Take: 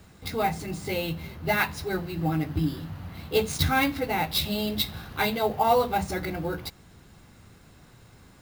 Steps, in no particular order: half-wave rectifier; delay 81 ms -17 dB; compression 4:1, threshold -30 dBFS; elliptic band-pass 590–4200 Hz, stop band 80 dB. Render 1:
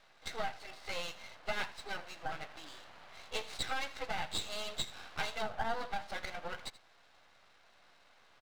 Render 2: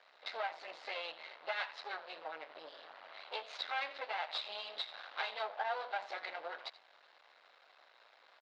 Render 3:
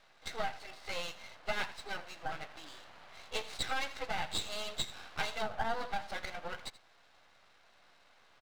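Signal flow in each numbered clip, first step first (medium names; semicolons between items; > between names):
elliptic band-pass > compression > half-wave rectifier > delay; delay > compression > half-wave rectifier > elliptic band-pass; elliptic band-pass > half-wave rectifier > delay > compression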